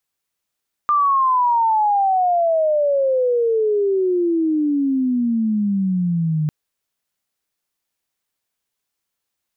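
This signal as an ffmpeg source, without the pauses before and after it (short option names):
-f lavfi -i "aevalsrc='pow(10,(-13-3.5*t/5.6)/20)*sin(2*PI*1200*5.6/log(150/1200)*(exp(log(150/1200)*t/5.6)-1))':d=5.6:s=44100"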